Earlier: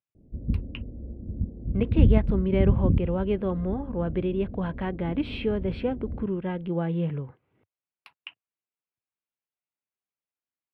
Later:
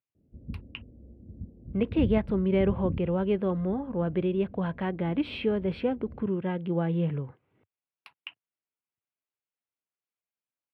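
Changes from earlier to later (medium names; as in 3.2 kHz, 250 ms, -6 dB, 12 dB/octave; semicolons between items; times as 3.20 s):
background -10.0 dB; master: add high-pass 60 Hz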